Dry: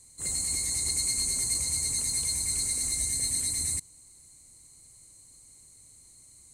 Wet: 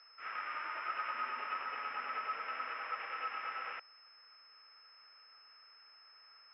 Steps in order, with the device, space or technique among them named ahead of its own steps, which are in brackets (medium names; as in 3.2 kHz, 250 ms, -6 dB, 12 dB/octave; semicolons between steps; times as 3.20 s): 1.12–2.69 s: peaking EQ 240 Hz +12 dB 0.46 oct; toy sound module (decimation joined by straight lines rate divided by 8×; class-D stage that switches slowly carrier 5.2 kHz; cabinet simulation 690–3700 Hz, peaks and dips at 790 Hz -5 dB, 1.3 kHz +7 dB, 3.3 kHz -6 dB); trim -8 dB